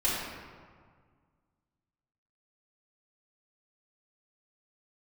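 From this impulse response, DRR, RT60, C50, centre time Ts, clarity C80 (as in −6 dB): −9.5 dB, 1.8 s, −1.0 dB, 100 ms, 1.5 dB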